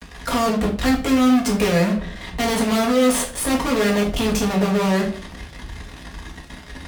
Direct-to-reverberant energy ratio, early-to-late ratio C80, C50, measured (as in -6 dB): -2.0 dB, 13.5 dB, 8.5 dB